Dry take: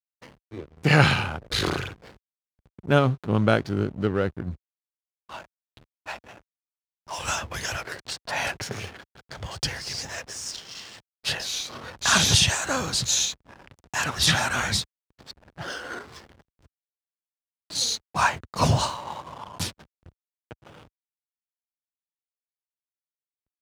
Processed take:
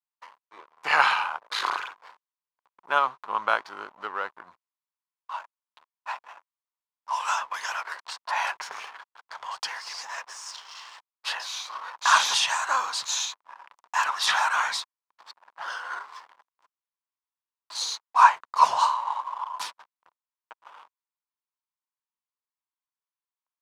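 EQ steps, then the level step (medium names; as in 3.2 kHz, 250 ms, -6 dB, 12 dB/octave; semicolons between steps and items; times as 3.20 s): resonant high-pass 1 kHz, resonance Q 4.9; treble shelf 8.7 kHz -8.5 dB; -3.5 dB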